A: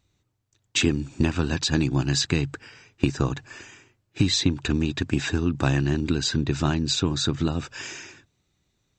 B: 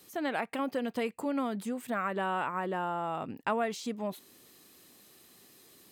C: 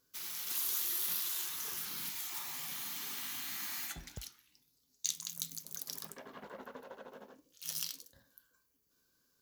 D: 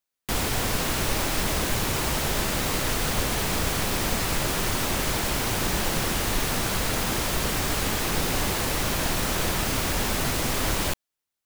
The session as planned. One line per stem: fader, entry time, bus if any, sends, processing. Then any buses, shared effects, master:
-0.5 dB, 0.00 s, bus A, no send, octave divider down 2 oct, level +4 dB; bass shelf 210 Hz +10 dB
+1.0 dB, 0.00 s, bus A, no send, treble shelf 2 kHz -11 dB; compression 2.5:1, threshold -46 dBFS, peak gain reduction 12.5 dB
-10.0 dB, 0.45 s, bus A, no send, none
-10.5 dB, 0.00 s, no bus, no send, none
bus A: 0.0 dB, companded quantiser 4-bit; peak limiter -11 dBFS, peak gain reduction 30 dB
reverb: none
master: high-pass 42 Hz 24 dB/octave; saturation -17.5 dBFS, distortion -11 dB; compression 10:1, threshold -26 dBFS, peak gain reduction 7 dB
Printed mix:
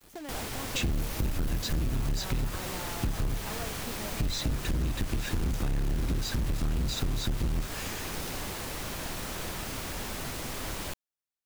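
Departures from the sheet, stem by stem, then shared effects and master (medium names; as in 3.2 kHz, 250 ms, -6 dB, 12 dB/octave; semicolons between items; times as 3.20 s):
stem A -0.5 dB -> -7.0 dB; master: missing high-pass 42 Hz 24 dB/octave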